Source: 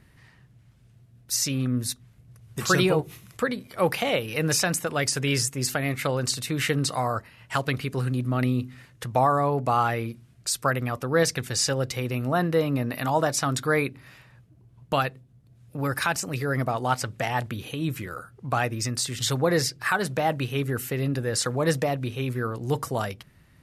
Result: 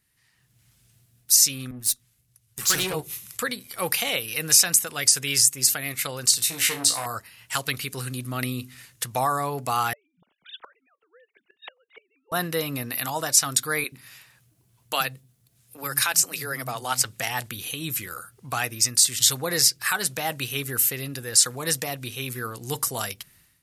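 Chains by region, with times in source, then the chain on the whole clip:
0:01.71–0:02.94: tube saturation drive 22 dB, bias 0.55 + multiband upward and downward expander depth 40%
0:06.37–0:07.06: high-pass filter 96 Hz 6 dB per octave + flutter between parallel walls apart 3 metres, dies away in 0.24 s + saturating transformer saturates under 1,000 Hz
0:09.93–0:12.32: three sine waves on the formant tracks + gate with flip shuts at −27 dBFS, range −34 dB
0:13.84–0:17.05: low-shelf EQ 73 Hz −9 dB + multiband delay without the direct sound highs, lows 80 ms, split 240 Hz
whole clip: first-order pre-emphasis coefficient 0.9; notch filter 590 Hz, Q 17; automatic gain control gain up to 15.5 dB; level −2 dB

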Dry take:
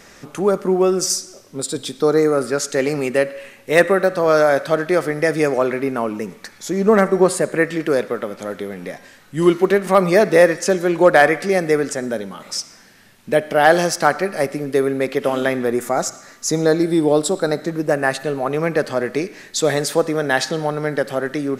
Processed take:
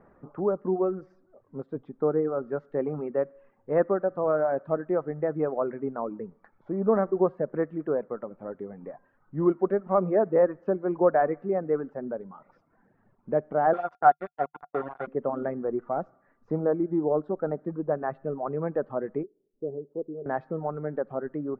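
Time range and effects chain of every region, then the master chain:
0:13.73–0:15.07: centre clipping without the shift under −16 dBFS + spectral tilt +3.5 dB per octave + hollow resonant body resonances 730/1,400/3,500 Hz, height 15 dB, ringing for 70 ms
0:19.23–0:20.26: mu-law and A-law mismatch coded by A + transistor ladder low-pass 450 Hz, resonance 65%
whole clip: reverb reduction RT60 0.81 s; low-pass filter 1,200 Hz 24 dB per octave; parametric band 150 Hz +2.5 dB 0.24 octaves; level −8.5 dB

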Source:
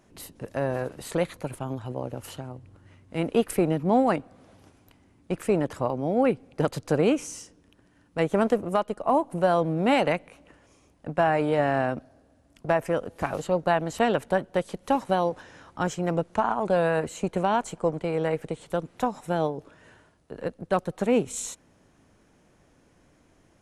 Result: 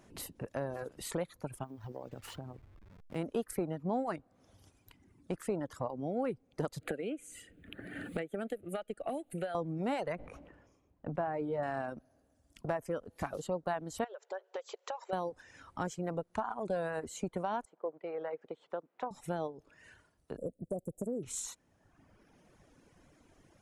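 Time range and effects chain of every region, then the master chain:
0:01.64–0:03.16: hold until the input has moved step −45 dBFS + high-shelf EQ 4,600 Hz −9.5 dB + downward compressor 2 to 1, threshold −39 dBFS
0:06.81–0:09.55: low-shelf EQ 330 Hz −10 dB + phaser with its sweep stopped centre 2,400 Hz, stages 4 + multiband upward and downward compressor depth 100%
0:10.15–0:11.63: low-pass filter 1,100 Hz 6 dB per octave + level that may fall only so fast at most 49 dB per second
0:14.04–0:15.13: linear-phase brick-wall band-pass 370–7,700 Hz + downward compressor 2.5 to 1, threshold −34 dBFS
0:17.65–0:19.11: high-pass filter 450 Hz + head-to-tape spacing loss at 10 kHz 36 dB
0:20.37–0:21.23: Chebyshev band-stop filter 640–7,500 Hz, order 4 + high-shelf EQ 7,600 Hz +6 dB + downward compressor 3 to 1, threshold −24 dBFS
whole clip: reverb reduction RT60 1.2 s; dynamic equaliser 2,600 Hz, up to −6 dB, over −51 dBFS, Q 2.2; downward compressor 2 to 1, threshold −40 dBFS

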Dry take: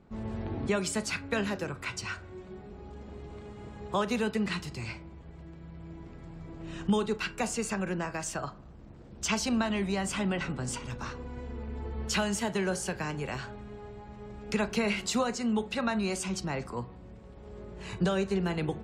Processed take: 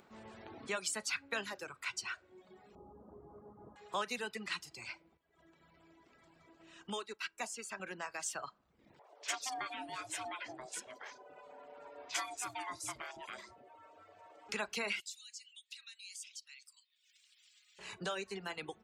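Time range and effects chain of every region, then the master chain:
0:02.75–0:03.76: Butterworth low-pass 1,200 Hz + low-shelf EQ 490 Hz +9 dB
0:05.17–0:07.80: comb filter 3.1 ms, depth 30% + expander for the loud parts, over −44 dBFS
0:08.99–0:14.49: ring modulation 510 Hz + three-band delay without the direct sound mids, highs, lows 50/280 ms, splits 350/4,200 Hz
0:15.00–0:17.79: inverse Chebyshev high-pass filter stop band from 480 Hz, stop band 80 dB + downward compressor 2 to 1, threshold −47 dBFS
whole clip: high-pass filter 1,200 Hz 6 dB per octave; reverb reduction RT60 0.87 s; upward compression, threshold −54 dBFS; level −2 dB

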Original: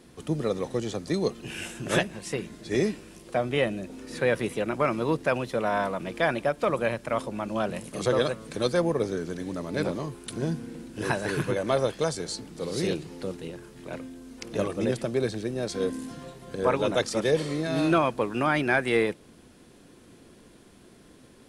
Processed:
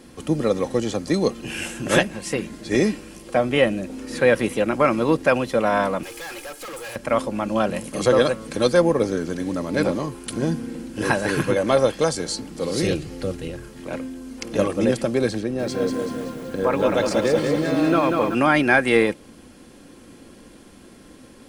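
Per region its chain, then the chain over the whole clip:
0:06.03–0:06.96: RIAA equalisation recording + comb filter 2.4 ms, depth 75% + tube saturation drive 40 dB, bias 0.6
0:12.82–0:13.70: low shelf with overshoot 150 Hz +6.5 dB, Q 1.5 + notch filter 940 Hz, Q 5.1
0:15.40–0:18.35: high-shelf EQ 4,500 Hz −8 dB + downward compressor 1.5 to 1, threshold −28 dBFS + feedback echo at a low word length 190 ms, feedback 55%, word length 9 bits, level −4 dB
whole clip: notch filter 3,700 Hz, Q 16; comb filter 3.7 ms, depth 31%; level +6.5 dB

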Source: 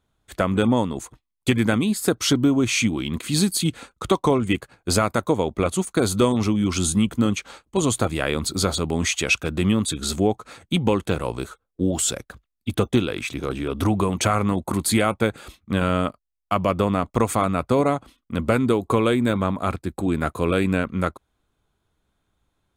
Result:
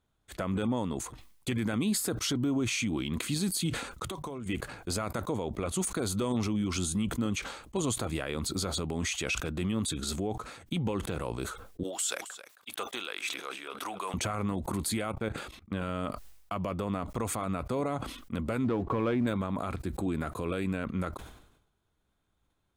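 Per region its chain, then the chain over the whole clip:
0:04.04–0:04.46: high-shelf EQ 9,200 Hz +9.5 dB + mains-hum notches 50/100/150 Hz + downward compressor 16 to 1, threshold −29 dBFS
0:11.83–0:14.14: high-pass filter 880 Hz + single-tap delay 269 ms −20 dB
0:15.12–0:15.82: high-shelf EQ 4,900 Hz −6.5 dB + output level in coarse steps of 23 dB
0:18.64–0:19.27: low-pass filter 2,300 Hz + notch filter 410 Hz, Q 11 + leveller curve on the samples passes 1
whole clip: brickwall limiter −16.5 dBFS; level that may fall only so fast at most 66 dB per second; level −5.5 dB

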